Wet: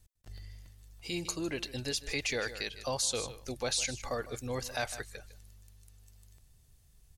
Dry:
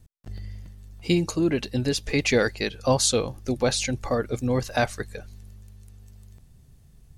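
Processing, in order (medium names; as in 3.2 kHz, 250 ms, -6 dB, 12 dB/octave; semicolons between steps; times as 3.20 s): treble shelf 2.6 kHz +7.5 dB; on a send: delay 154 ms -16.5 dB; on the sum: peak limiter -13 dBFS, peak gain reduction 9.5 dB; peaking EQ 200 Hz -8.5 dB 1.9 oct; trim -8 dB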